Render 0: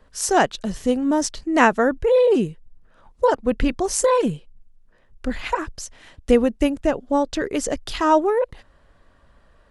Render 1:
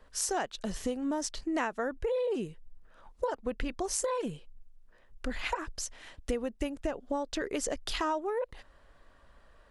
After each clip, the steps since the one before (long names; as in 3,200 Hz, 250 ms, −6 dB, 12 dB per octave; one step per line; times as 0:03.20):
parametric band 130 Hz −6.5 dB 2.4 octaves
downward compressor 6 to 1, threshold −27 dBFS, peak gain reduction 15.5 dB
level −2.5 dB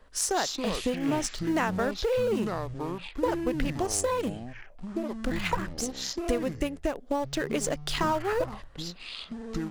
in parallel at −8.5 dB: centre clipping without the shift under −31 dBFS
on the sum: delay with pitch and tempo change per echo 121 ms, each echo −7 semitones, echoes 3, each echo −6 dB
level +1.5 dB